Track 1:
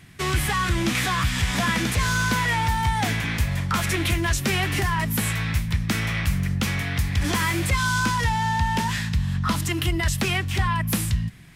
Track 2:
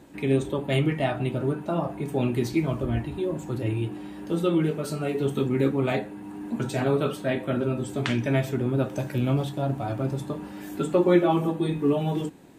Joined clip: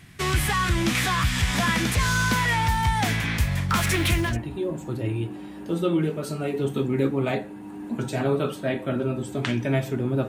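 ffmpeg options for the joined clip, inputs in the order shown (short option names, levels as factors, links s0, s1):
-filter_complex "[0:a]asettb=1/sr,asplit=3[s0][s1][s2];[s0]atrim=end=3.694[s3];[s1]atrim=start=3.69:end=4.37,asetpts=PTS-STARTPTS,afade=t=in:d=0.004:c=qsin,afade=t=out:st=0.676:d=0.004:c=qsin,aeval=exprs='val(0)+0.5*0.02*sgn(val(0))':c=same[s4];[s2]atrim=start=4.366[s5];[s3][s4]acrossfade=d=0.004:c1=hsin:c2=qsin[s6];[s6][s5]acrossfade=d=0.004:c1=qsin:c2=hsin,apad=whole_dur=10.28,atrim=end=10.28,atrim=end=4.37,asetpts=PTS-STARTPTS[s7];[1:a]atrim=start=2.82:end=8.89,asetpts=PTS-STARTPTS[s8];[s7][s8]acrossfade=d=0.16:c1=tri:c2=tri"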